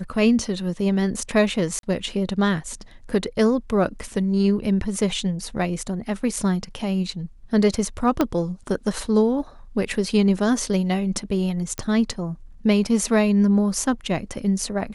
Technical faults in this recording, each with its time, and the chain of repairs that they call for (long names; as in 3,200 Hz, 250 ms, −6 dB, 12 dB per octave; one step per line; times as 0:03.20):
0:01.79–0:01.83: drop-out 42 ms
0:08.21: click −7 dBFS
0:11.78: click −14 dBFS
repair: click removal
repair the gap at 0:01.79, 42 ms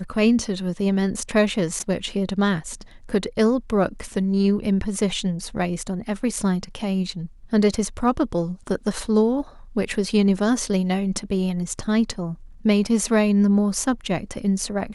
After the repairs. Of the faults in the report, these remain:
0:08.21: click